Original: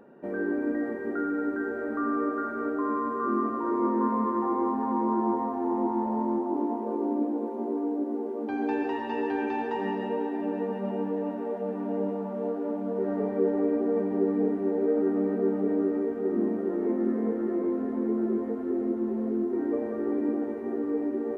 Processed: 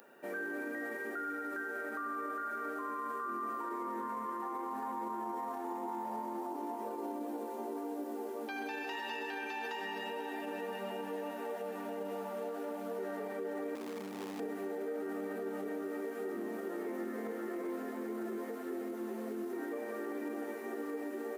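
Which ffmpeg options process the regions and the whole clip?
-filter_complex "[0:a]asettb=1/sr,asplit=3[a][b][c];[a]atrim=end=13.754[d];[b]atrim=start=13.75:end=14.4,asetpts=PTS-STARTPTS,afade=t=in:d=0.004:c=qsin,afade=t=out:st=0.646:d=0.004:c=qsin,tiltshelf=f=1.4k:g=3.5,acrossover=split=230|3000[e][f][g];[f]acompressor=threshold=-37dB:ratio=4:attack=3.2:release=140:knee=2.83:detection=peak[h];[e][h][g]amix=inputs=3:normalize=0,asoftclip=type=hard:threshold=-28dB[i];[c]atrim=start=14.396[j];[d][i]acrossfade=d=0.004:c1=hsin:c2=qsin[k];[k][j]acrossfade=d=0.004:c1=qsin:c2=hsin,aderivative,bandreject=f=1k:w=12,alimiter=level_in=24dB:limit=-24dB:level=0:latency=1:release=45,volume=-24dB,volume=16.5dB"

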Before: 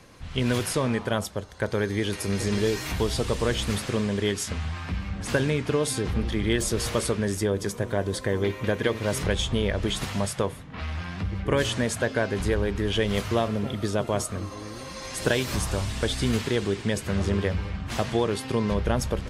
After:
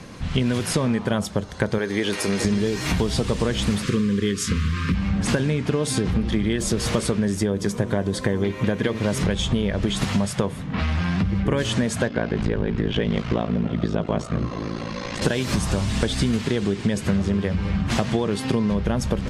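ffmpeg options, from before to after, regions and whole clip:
-filter_complex "[0:a]asettb=1/sr,asplit=3[a][b][c];[a]atrim=end=1.784[d];[b]atrim=start=1.78:end=2.45,asetpts=PTS-STARTPTS,afade=t=in:d=0.004:c=qsin,afade=t=out:st=0.666:d=0.004:c=qsin,bass=f=250:g=-14,treble=f=4k:g=-2,acompressor=mode=upward:threshold=-32dB:ratio=2.5:attack=3.2:release=140:knee=2.83:detection=peak[e];[c]atrim=start=2.446[f];[d][e]acrossfade=d=0.004:c1=hsin:c2=qsin[g];[g][f]acrossfade=d=0.004:c1=qsin:c2=hsin,asettb=1/sr,asplit=3[h][i][j];[h]atrim=end=3.834[k];[i]atrim=start=3.83:end=4.95,asetpts=PTS-STARTPTS,afade=t=in:d=0.004:c=qsin,afade=t=out:st=1.116:d=0.004:c=qsin,acrusher=bits=8:mode=log:mix=0:aa=0.000001,aeval=exprs='val(0)+0.00224*sin(2*PI*1200*n/s)':c=same,asuperstop=centerf=730:order=8:qfactor=1.4[l];[j]atrim=start=4.946[m];[k][l]acrossfade=d=0.004:c1=hsin:c2=qsin[n];[n][m]acrossfade=d=0.004:c1=qsin:c2=hsin,asettb=1/sr,asplit=3[o][p][q];[o]atrim=end=12.084[r];[p]atrim=start=12.08:end=15.22,asetpts=PTS-STARTPTS,afade=t=in:d=0.004:c=qsin,afade=t=out:st=3.136:d=0.004:c=qsin,aeval=exprs='val(0)*sin(2*PI*28*n/s)':c=same,lowpass=4k[s];[q]atrim=start=15.216[t];[r][s]acrossfade=d=0.004:c1=hsin:c2=qsin[u];[u][t]acrossfade=d=0.004:c1=qsin:c2=hsin,lowpass=10k,equalizer=f=190:t=o:w=0.99:g=8,acompressor=threshold=-27dB:ratio=10,volume=9dB"

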